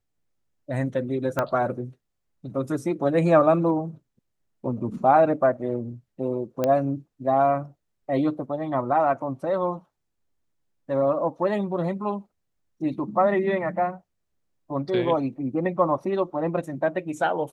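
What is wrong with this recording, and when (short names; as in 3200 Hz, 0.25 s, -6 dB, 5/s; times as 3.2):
1.39 pop -11 dBFS
6.64 pop -11 dBFS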